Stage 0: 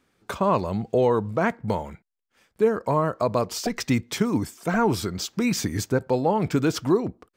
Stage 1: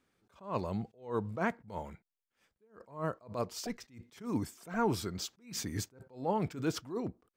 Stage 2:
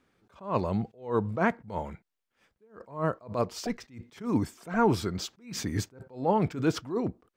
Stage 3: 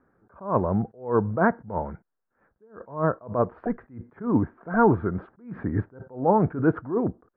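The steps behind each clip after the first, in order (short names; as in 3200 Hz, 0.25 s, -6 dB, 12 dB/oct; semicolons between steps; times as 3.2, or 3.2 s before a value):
attack slew limiter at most 160 dB/s; gain -8.5 dB
high shelf 5300 Hz -9 dB; gain +7 dB
elliptic low-pass 1600 Hz, stop band 80 dB; gain +5.5 dB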